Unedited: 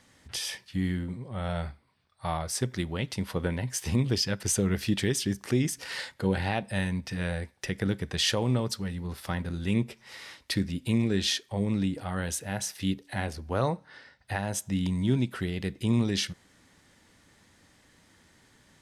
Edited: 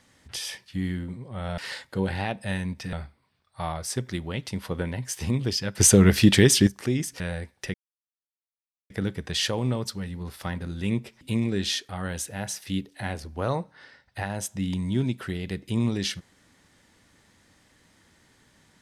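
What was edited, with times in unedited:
4.43–5.32 s: gain +10.5 dB
5.85–7.20 s: move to 1.58 s
7.74 s: insert silence 1.16 s
10.05–10.79 s: delete
11.47–12.02 s: delete

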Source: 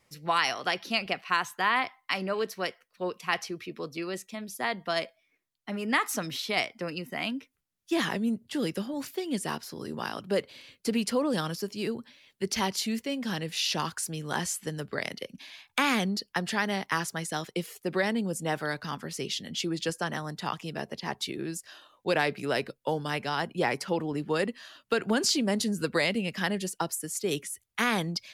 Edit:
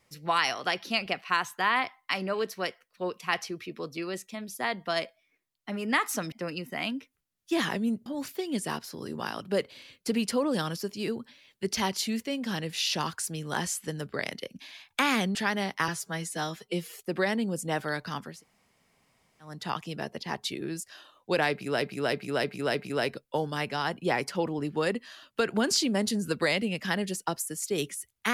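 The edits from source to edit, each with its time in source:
6.32–6.72 s: delete
8.46–8.85 s: delete
16.14–16.47 s: delete
17.00–17.70 s: stretch 1.5×
19.09–20.28 s: room tone, crossfade 0.24 s
22.28–22.59 s: loop, 5 plays

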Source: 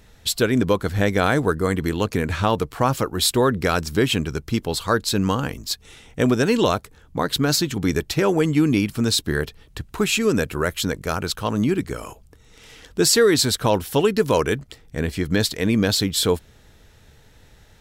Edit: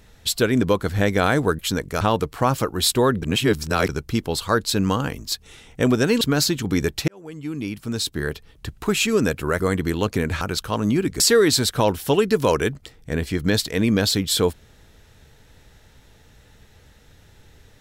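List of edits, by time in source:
1.59–2.40 s: swap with 10.72–11.14 s
3.61–4.28 s: reverse
6.60–7.33 s: delete
8.20–9.85 s: fade in
11.93–13.06 s: delete

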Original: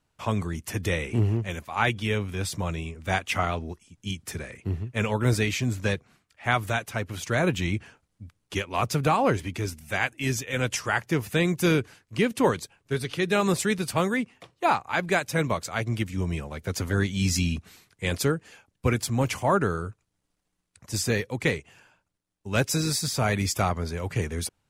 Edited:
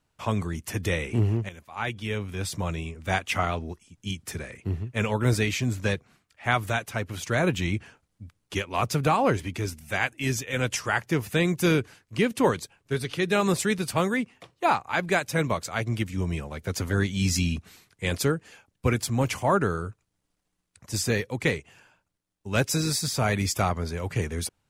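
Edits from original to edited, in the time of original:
1.49–2.62 s: fade in, from -13 dB

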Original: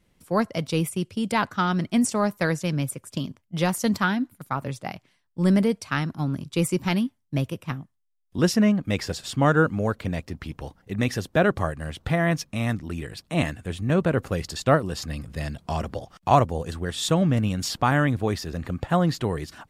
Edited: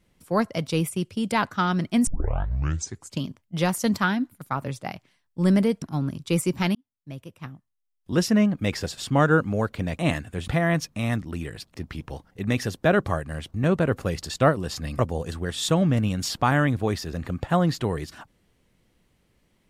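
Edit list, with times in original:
2.07 s: tape start 1.15 s
5.82–6.08 s: delete
7.01–8.69 s: fade in
10.25–12.05 s: swap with 13.31–13.80 s
15.25–16.39 s: delete

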